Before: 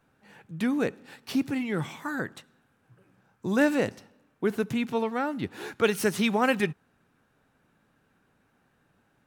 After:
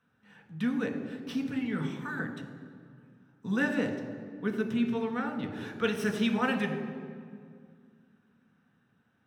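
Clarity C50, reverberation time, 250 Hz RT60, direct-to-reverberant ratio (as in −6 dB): 8.0 dB, 2.1 s, 2.8 s, 3.0 dB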